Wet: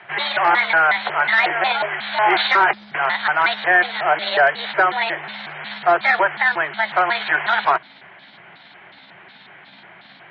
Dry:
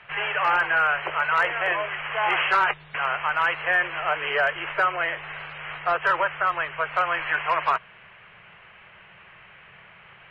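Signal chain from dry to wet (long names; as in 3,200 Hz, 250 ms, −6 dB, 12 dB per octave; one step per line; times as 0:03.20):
pitch shifter gated in a rhythm +5.5 semitones, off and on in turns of 182 ms
loudspeaker in its box 170–4,700 Hz, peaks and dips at 350 Hz +8 dB, 500 Hz −7 dB, 730 Hz +5 dB, 1,200 Hz −6 dB, 2,700 Hz −10 dB
level +8 dB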